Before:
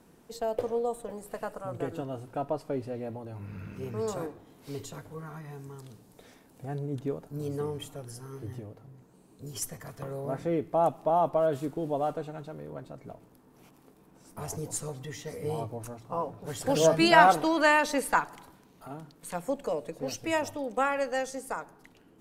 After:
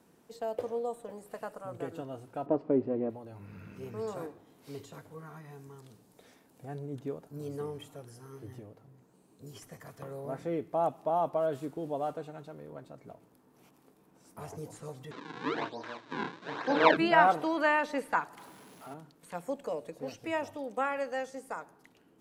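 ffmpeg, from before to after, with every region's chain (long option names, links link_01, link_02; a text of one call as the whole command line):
ffmpeg -i in.wav -filter_complex "[0:a]asettb=1/sr,asplit=3[link_01][link_02][link_03];[link_01]atrim=end=2.464[link_04];[link_02]atrim=start=2.46:end=3.1,asetpts=PTS-STARTPTS,afade=type=in:duration=0.004:curve=qsin,afade=type=out:start_time=0.636:duration=0.004:curve=qsin,aeval=exprs='if(lt(val(0),0),0.708*val(0),val(0))':channel_layout=same,lowpass=2300,equalizer=frequency=310:width_type=o:width=1.9:gain=14[link_05];[link_03]atrim=start=3.096[link_06];[link_04][link_05]acrossfade=duration=0.004:curve1=hsin:curve2=qsin[link_07];[link_07][link_06]acrossfade=duration=0.004:curve1=qsin:curve2=hsin,asettb=1/sr,asplit=3[link_08][link_09][link_10];[link_08]atrim=end=15.114[link_11];[link_09]atrim=start=15.11:end=16.97,asetpts=PTS-STARTPTS,afade=type=in:duration=0.004:curve=qsin,afade=type=out:start_time=1.856:duration=0.004:curve=qsin,asplit=2[link_12][link_13];[link_13]adelay=35,volume=-4.5dB[link_14];[link_12][link_14]amix=inputs=2:normalize=0,atrim=end_sample=82026,acrusher=samples=41:mix=1:aa=0.000001:lfo=1:lforange=65.6:lforate=1.1,highpass=frequency=170:width=0.5412,highpass=frequency=170:width=1.3066,equalizer=frequency=190:width_type=q:width=4:gain=-4,equalizer=frequency=300:width_type=q:width=4:gain=6,equalizer=frequency=1000:width_type=q:width=4:gain=10,equalizer=frequency=1600:width_type=q:width=4:gain=10,equalizer=frequency=2400:width_type=q:width=4:gain=3,equalizer=frequency=3800:width_type=q:width=4:gain=10,lowpass=frequency=6600:width=0.5412,lowpass=frequency=6600:width=1.3066[link_15];[link_10]atrim=start=16.966[link_16];[link_11][link_15]acrossfade=duration=0.004:curve1=hsin:curve2=qsin[link_17];[link_17][link_16]acrossfade=duration=0.004:curve1=qsin:curve2=hsin,asettb=1/sr,asplit=3[link_18][link_19][link_20];[link_18]atrim=end=18.374[link_21];[link_19]atrim=start=18.37:end=18.94,asetpts=PTS-STARTPTS,afade=type=in:duration=0.004:curve=qsin,afade=type=out:start_time=0.566:duration=0.004:curve=qsin,aeval=exprs='val(0)+0.5*0.00596*sgn(val(0))':channel_layout=same,highpass=frequency=150:poles=1,aeval=exprs='val(0)+0.00112*sin(2*PI*11000*n/s)':channel_layout=same[link_22];[link_20]atrim=start=18.936[link_23];[link_21][link_22]acrossfade=duration=0.004:curve1=hsin:curve2=qsin[link_24];[link_24][link_23]acrossfade=duration=0.004:curve1=qsin:curve2=hsin,acrossover=split=3200[link_25][link_26];[link_26]acompressor=threshold=-50dB:ratio=4:attack=1:release=60[link_27];[link_25][link_27]amix=inputs=2:normalize=0,highpass=frequency=130:poles=1,volume=-4dB" out.wav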